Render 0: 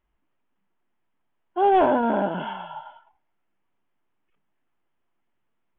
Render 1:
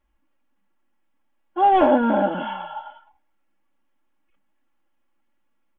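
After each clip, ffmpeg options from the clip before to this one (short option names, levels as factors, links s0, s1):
-af "aecho=1:1:3.6:0.98"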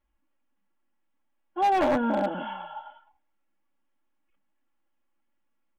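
-af "aeval=exprs='0.282*(abs(mod(val(0)/0.282+3,4)-2)-1)':c=same,volume=0.501"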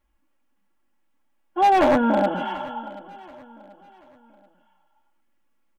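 -af "aecho=1:1:733|1466|2199:0.112|0.0426|0.0162,volume=2"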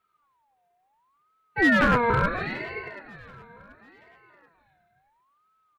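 -af "aeval=exprs='val(0)*sin(2*PI*1000*n/s+1000*0.3/0.72*sin(2*PI*0.72*n/s))':c=same"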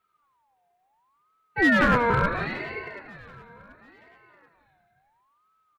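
-af "aecho=1:1:184:0.211"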